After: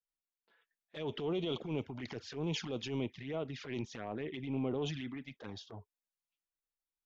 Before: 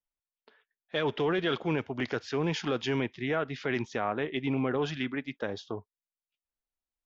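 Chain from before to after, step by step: touch-sensitive flanger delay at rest 6.3 ms, full sweep at -25.5 dBFS; dynamic bell 1.6 kHz, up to -5 dB, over -49 dBFS, Q 1.1; transient shaper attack -10 dB, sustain +5 dB; trim -4.5 dB

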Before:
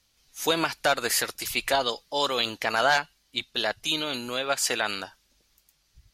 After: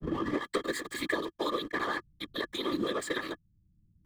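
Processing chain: tape start-up on the opening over 0.98 s; rippled EQ curve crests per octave 1, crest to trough 15 dB; compression 4:1, threshold -28 dBFS, peak gain reduction 11 dB; hum notches 50/100/150/200/250 Hz; granular stretch 0.66×, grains 141 ms; hysteresis with a dead band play -31.5 dBFS; whisper effect; small resonant body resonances 320/1200/1700/3200 Hz, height 17 dB, ringing for 30 ms; three bands compressed up and down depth 40%; trim -6.5 dB

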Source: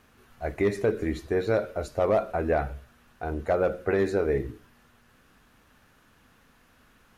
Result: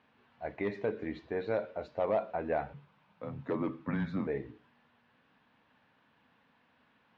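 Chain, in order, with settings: 2.73–4.27 s: frequency shift -210 Hz; cabinet simulation 150–3800 Hz, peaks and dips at 370 Hz -6 dB, 920 Hz +5 dB, 1.3 kHz -5 dB; trim -6.5 dB

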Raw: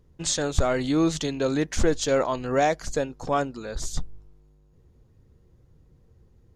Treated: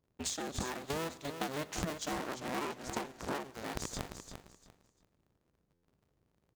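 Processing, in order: cycle switcher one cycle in 2, inverted; high-pass 140 Hz 6 dB/octave; 0.74–1.54 s: gate -26 dBFS, range -11 dB; compression 8:1, threshold -31 dBFS, peak gain reduction 14 dB; power-law waveshaper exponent 1.4; feedback delay 346 ms, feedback 24%, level -9 dB; Schroeder reverb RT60 1.2 s, combs from 27 ms, DRR 18 dB; buffer glitch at 5.73 s, samples 512, times 8; 2.11–3.51 s: loudspeaker Doppler distortion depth 0.6 ms; trim +1 dB

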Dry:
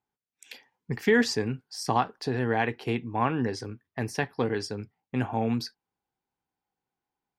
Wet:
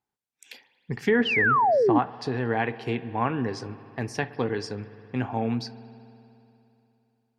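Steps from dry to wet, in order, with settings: spring tank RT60 3 s, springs 58 ms, chirp 20 ms, DRR 14.5 dB; painted sound fall, 1.25–1.99 s, 270–3200 Hz -20 dBFS; low-pass that closes with the level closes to 2.1 kHz, closed at -18 dBFS

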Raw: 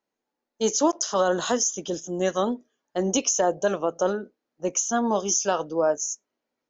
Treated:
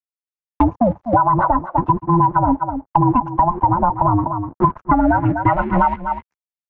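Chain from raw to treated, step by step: every band turned upside down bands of 500 Hz; 0.77–1.17 s: time-frequency box 860–4300 Hz -30 dB; 3.32–5.70 s: tilt shelf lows +5.5 dB, about 1.4 kHz; compression 6:1, threshold -22 dBFS, peak gain reduction 7.5 dB; LFO low-pass sine 8.6 Hz 400–1900 Hz; crossover distortion -48 dBFS; low-pass sweep 940 Hz -> 2.3 kHz, 4.32–5.62 s; delay 248 ms -15.5 dB; loudness maximiser +15 dB; three bands compressed up and down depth 100%; trim -5 dB

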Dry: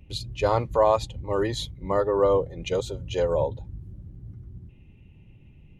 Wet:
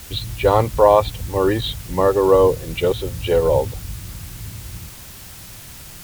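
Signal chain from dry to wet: steep low-pass 4.4 kHz 72 dB/octave; in parallel at -8 dB: word length cut 6-bit, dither triangular; on the sum: speed mistake 25 fps video run at 24 fps; trim +4.5 dB

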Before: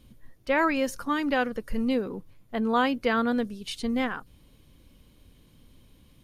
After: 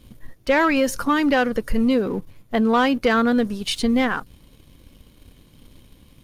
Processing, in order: waveshaping leveller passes 1; compression 2:1, threshold -24 dBFS, peak gain reduction 4 dB; trim +7 dB

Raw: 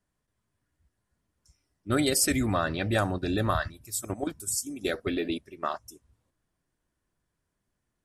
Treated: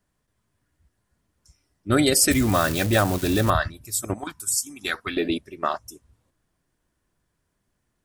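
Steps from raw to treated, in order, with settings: 2.31–3.50 s: zero-crossing glitches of -25 dBFS; 4.18–5.17 s: resonant low shelf 740 Hz -9 dB, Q 3; trim +6 dB

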